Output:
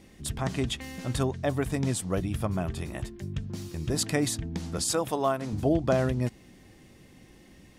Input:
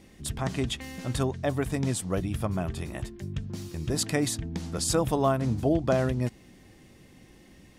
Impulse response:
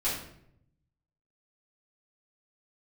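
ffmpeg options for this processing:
-filter_complex "[0:a]asettb=1/sr,asplit=3[a][b][c];[a]atrim=end=4.824[d];[b]atrim=start=4.82:end=5.53,asetpts=PTS-STARTPTS,afade=t=in:d=0.004:c=qsin,afade=t=out:st=0.706:d=0.004:c=qsin,highpass=f=400:p=1[e];[c]atrim=start=5.526[f];[d][e]acrossfade=d=0.004:c1=hsin:c2=qsin[g];[g][f]acrossfade=d=0.004:c1=qsin:c2=hsin"

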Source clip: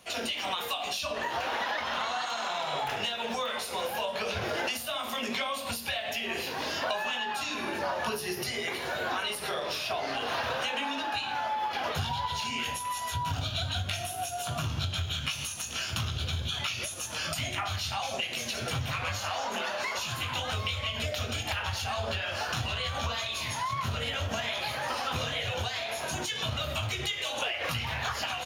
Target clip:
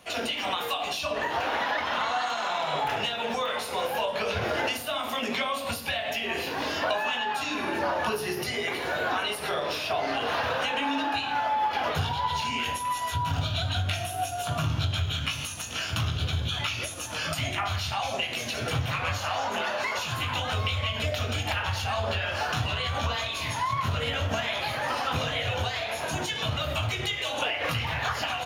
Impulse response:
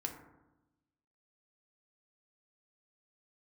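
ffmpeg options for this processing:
-filter_complex "[0:a]asplit=2[a][b];[1:a]atrim=start_sample=2205,lowpass=3.9k[c];[b][c]afir=irnorm=-1:irlink=0,volume=-3dB[d];[a][d]amix=inputs=2:normalize=0"

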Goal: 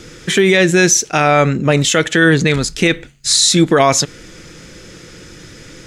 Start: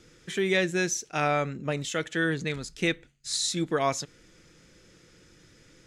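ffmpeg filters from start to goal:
-af "alimiter=level_in=20.5dB:limit=-1dB:release=50:level=0:latency=1,volume=-1dB"

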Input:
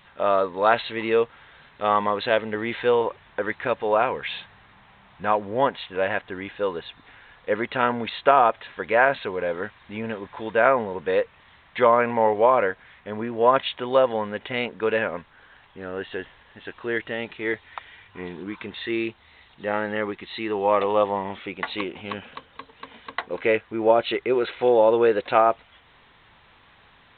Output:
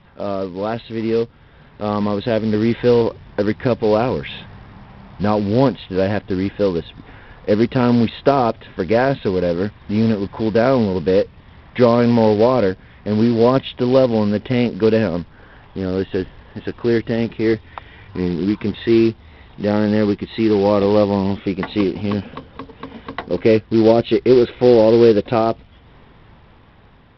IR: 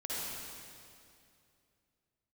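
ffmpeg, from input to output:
-filter_complex "[0:a]tiltshelf=f=720:g=9,acrossover=split=350|3000[a][b][c];[b]acompressor=threshold=-45dB:ratio=1.5[d];[a][d][c]amix=inputs=3:normalize=0,aeval=exprs='0.266*(cos(1*acos(clip(val(0)/0.266,-1,1)))-cos(1*PI/2))+0.0015*(cos(6*acos(clip(val(0)/0.266,-1,1)))-cos(6*PI/2))':c=same,dynaudnorm=f=630:g=7:m=7dB,aresample=11025,acrusher=bits=5:mode=log:mix=0:aa=0.000001,aresample=44100,volume=3.5dB"

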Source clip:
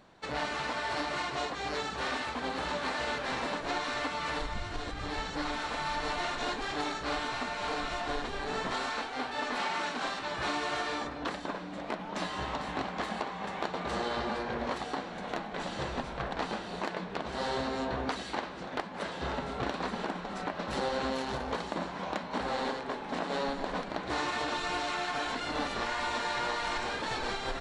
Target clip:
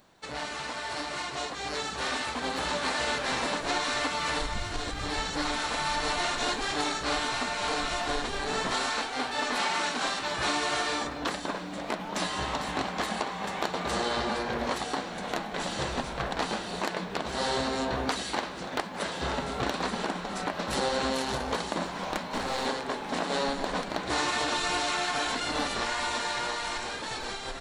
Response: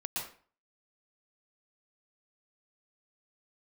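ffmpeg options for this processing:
-filter_complex "[0:a]aemphasis=mode=production:type=50fm,dynaudnorm=f=300:g=13:m=6dB,asettb=1/sr,asplit=3[a][b][c];[a]atrim=end=21.854[d];[b]atrim=start=21.85:end=22.66,asetpts=PTS-STARTPTS,afade=t=in:d=0.004:c=qsin,afade=t=out:st=0.806:d=0.004:c=qsin,aeval=exprs='clip(val(0),-1,0.0355)':c=same[e];[c]atrim=start=22.656[f];[d][e]acrossfade=d=0.004:c1=hsin:c2=qsin[g];[g][f]acrossfade=d=0.004:c1=qsin:c2=hsin,volume=-2.5dB"

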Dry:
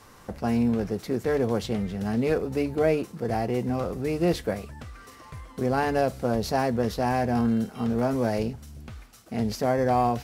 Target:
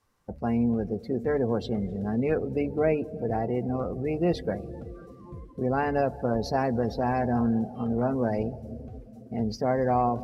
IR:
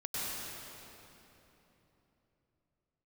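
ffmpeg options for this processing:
-filter_complex "[0:a]asplit=2[a][b];[1:a]atrim=start_sample=2205,asetrate=26460,aresample=44100,highshelf=f=4.5k:g=9[c];[b][c]afir=irnorm=-1:irlink=0,volume=-21.5dB[d];[a][d]amix=inputs=2:normalize=0,afftdn=nr=21:nf=-35,volume=-2dB"

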